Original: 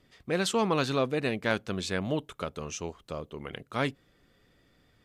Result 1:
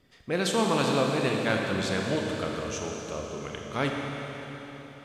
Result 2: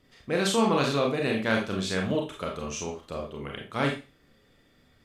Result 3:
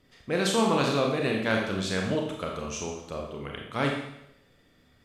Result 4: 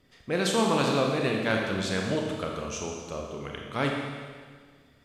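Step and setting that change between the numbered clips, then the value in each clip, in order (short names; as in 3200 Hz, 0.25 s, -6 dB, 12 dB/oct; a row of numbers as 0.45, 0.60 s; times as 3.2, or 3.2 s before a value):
Schroeder reverb, RT60: 4.2, 0.32, 0.8, 1.7 s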